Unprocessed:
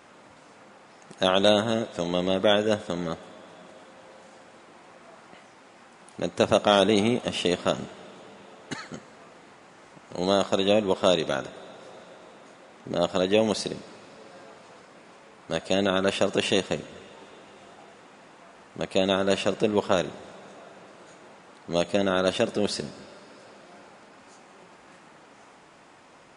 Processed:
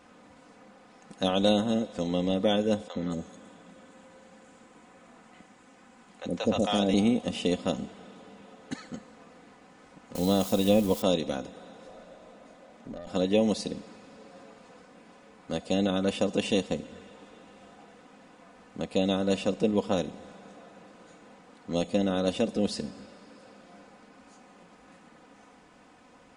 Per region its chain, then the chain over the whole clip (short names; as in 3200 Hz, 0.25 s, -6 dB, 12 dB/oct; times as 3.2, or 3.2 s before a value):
2.88–6.94 bell 7300 Hz +6 dB 0.47 oct + three bands offset in time mids, lows, highs 70/220 ms, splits 630/5500 Hz
10.15–11.02 switching spikes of -24 dBFS + low shelf 120 Hz +9 dB
11.87–13.07 bell 620 Hz +12 dB 0.21 oct + compressor 4:1, threshold -32 dBFS + tube stage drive 28 dB, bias 0.35
whole clip: low shelf 280 Hz +9 dB; comb 4 ms, depth 57%; dynamic EQ 1500 Hz, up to -7 dB, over -41 dBFS, Q 1.6; gain -6.5 dB